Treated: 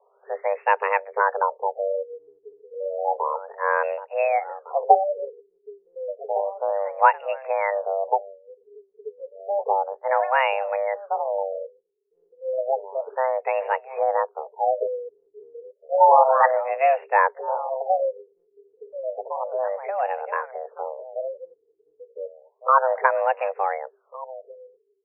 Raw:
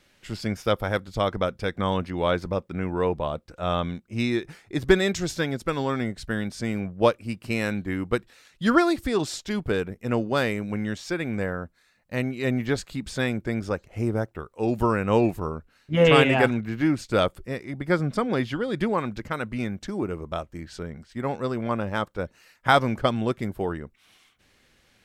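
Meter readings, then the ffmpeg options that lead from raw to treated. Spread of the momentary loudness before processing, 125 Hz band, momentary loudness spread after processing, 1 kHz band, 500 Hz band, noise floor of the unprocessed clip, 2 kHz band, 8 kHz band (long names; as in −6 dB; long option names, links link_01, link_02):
12 LU, below −40 dB, 19 LU, +8.5 dB, +2.0 dB, −63 dBFS, 0.0 dB, below −35 dB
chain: -filter_complex "[0:a]afreqshift=390,asplit=2[link_01][link_02];[link_02]adelay=1458,volume=-14dB,highshelf=frequency=4000:gain=-32.8[link_03];[link_01][link_03]amix=inputs=2:normalize=0,afftfilt=real='re*lt(b*sr/1024,430*pow(2900/430,0.5+0.5*sin(2*PI*0.31*pts/sr)))':imag='im*lt(b*sr/1024,430*pow(2900/430,0.5+0.5*sin(2*PI*0.31*pts/sr)))':win_size=1024:overlap=0.75,volume=3.5dB"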